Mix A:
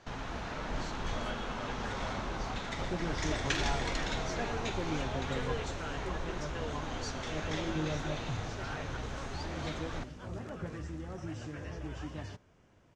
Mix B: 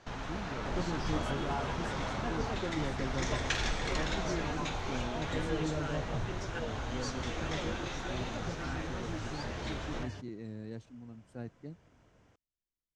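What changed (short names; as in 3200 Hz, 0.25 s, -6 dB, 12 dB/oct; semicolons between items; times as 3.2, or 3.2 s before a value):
speech +9.0 dB; second sound: entry -2.15 s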